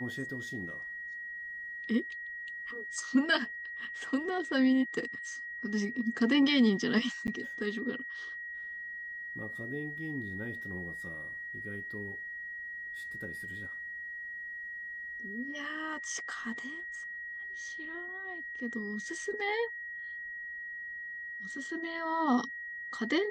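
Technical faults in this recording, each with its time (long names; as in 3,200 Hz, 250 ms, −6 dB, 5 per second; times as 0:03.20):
whistle 1,900 Hz −39 dBFS
0:07.27–0:07.28: drop-out 9.6 ms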